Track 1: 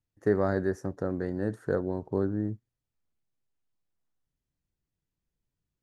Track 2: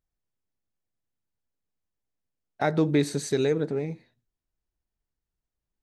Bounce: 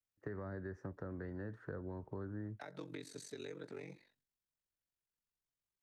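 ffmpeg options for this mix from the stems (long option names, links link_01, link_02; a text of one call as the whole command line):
ffmpeg -i stem1.wav -i stem2.wav -filter_complex "[0:a]lowpass=2300,agate=range=-17dB:threshold=-54dB:ratio=16:detection=peak,alimiter=limit=-20dB:level=0:latency=1:release=129,volume=-2dB[link_01];[1:a]highpass=frequency=720:poles=1,alimiter=limit=-24dB:level=0:latency=1:release=468,aeval=exprs='val(0)*sin(2*PI*23*n/s)':channel_layout=same,volume=-2dB[link_02];[link_01][link_02]amix=inputs=2:normalize=0,equalizer=frequency=750:width_type=o:width=0.29:gain=-4.5,acrossover=split=120|320|890[link_03][link_04][link_05][link_06];[link_03]acompressor=threshold=-49dB:ratio=4[link_07];[link_04]acompressor=threshold=-51dB:ratio=4[link_08];[link_05]acompressor=threshold=-52dB:ratio=4[link_09];[link_06]acompressor=threshold=-53dB:ratio=4[link_10];[link_07][link_08][link_09][link_10]amix=inputs=4:normalize=0" out.wav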